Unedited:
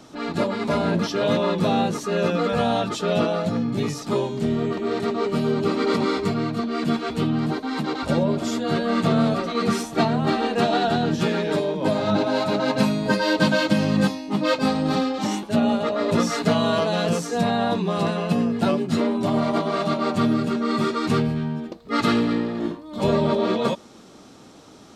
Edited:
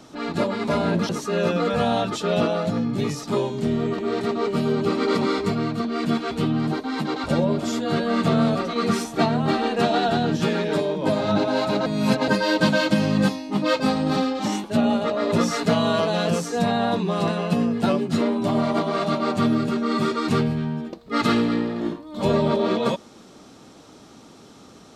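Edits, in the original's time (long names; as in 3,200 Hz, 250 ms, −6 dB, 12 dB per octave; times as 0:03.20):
0:01.09–0:01.88: remove
0:12.65–0:13.07: reverse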